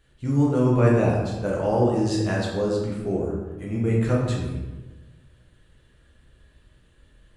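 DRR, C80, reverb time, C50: −4.0 dB, 4.0 dB, 1.2 s, 1.5 dB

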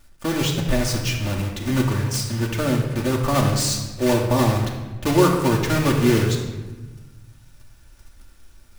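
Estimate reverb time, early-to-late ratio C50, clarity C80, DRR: 1.2 s, 4.5 dB, 6.5 dB, −1.5 dB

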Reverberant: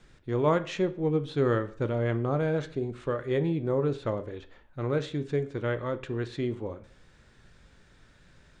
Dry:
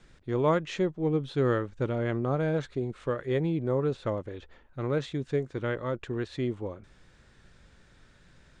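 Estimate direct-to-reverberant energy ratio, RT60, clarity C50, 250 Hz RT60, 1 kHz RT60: 10.0 dB, 0.45 s, 16.0 dB, 0.45 s, 0.45 s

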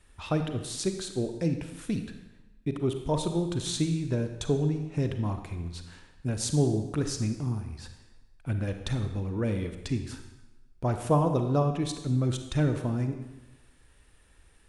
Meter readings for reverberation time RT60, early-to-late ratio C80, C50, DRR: 1.1 s, 9.5 dB, 7.5 dB, 6.5 dB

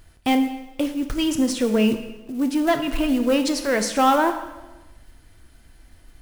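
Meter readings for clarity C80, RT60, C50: 11.5 dB, 1.1 s, 9.5 dB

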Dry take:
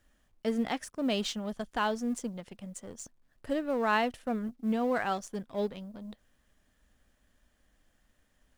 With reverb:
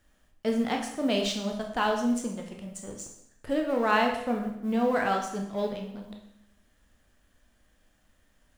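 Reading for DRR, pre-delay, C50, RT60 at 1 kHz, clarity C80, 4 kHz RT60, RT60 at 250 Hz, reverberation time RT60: 1.5 dB, 7 ms, 5.5 dB, 0.75 s, 8.5 dB, 0.70 s, 0.80 s, 0.75 s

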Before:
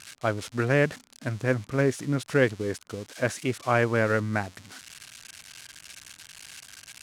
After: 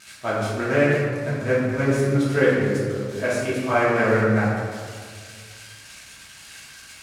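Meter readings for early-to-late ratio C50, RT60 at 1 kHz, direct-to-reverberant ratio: −1.5 dB, 1.8 s, −9.5 dB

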